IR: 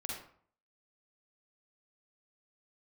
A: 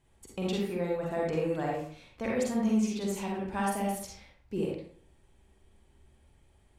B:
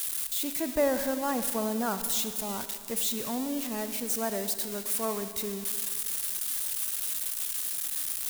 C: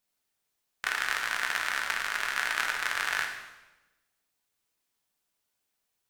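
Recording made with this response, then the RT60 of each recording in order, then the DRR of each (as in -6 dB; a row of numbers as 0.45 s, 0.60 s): A; 0.55 s, 2.1 s, 1.1 s; -3.0 dB, 9.5 dB, 1.5 dB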